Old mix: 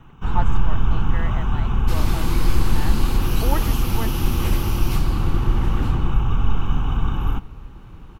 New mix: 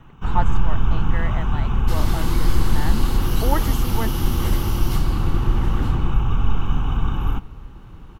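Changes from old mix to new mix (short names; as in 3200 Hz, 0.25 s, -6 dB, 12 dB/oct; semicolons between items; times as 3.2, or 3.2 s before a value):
speech +3.0 dB; second sound: add Butterworth band-stop 2500 Hz, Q 5.8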